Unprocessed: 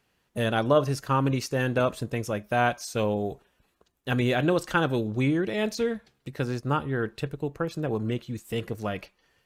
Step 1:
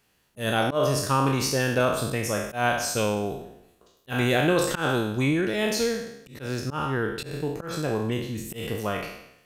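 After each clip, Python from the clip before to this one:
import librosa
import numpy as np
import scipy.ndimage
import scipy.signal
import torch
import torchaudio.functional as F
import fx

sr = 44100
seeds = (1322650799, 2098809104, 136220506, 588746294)

y = fx.spec_trails(x, sr, decay_s=0.81)
y = fx.high_shelf(y, sr, hz=5400.0, db=8.5)
y = fx.auto_swell(y, sr, attack_ms=136.0)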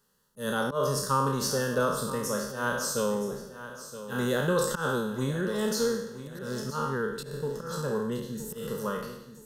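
y = fx.fixed_phaser(x, sr, hz=470.0, stages=8)
y = fx.echo_feedback(y, sr, ms=971, feedback_pct=33, wet_db=-13.0)
y = y * librosa.db_to_amplitude(-1.0)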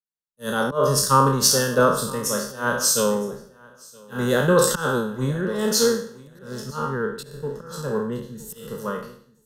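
y = fx.band_widen(x, sr, depth_pct=100)
y = y * librosa.db_to_amplitude(6.0)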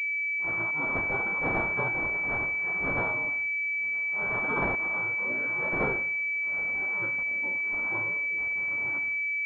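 y = scipy.signal.sosfilt(scipy.signal.butter(2, 110.0, 'highpass', fs=sr, output='sos'), x)
y = fx.spec_gate(y, sr, threshold_db=-15, keep='weak')
y = fx.pwm(y, sr, carrier_hz=2300.0)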